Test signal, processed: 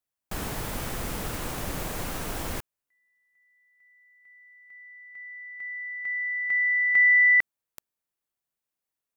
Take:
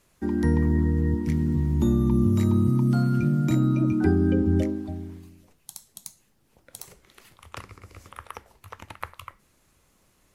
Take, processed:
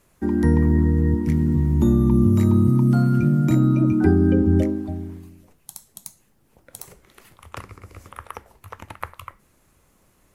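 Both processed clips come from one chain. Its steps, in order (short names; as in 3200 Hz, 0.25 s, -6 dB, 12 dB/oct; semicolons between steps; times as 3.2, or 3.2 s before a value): bell 4300 Hz -5.5 dB 1.9 oct; gain +4.5 dB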